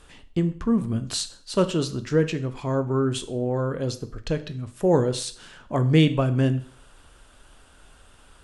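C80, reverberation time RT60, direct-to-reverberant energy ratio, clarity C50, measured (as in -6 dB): 19.0 dB, 0.50 s, 10.0 dB, 15.0 dB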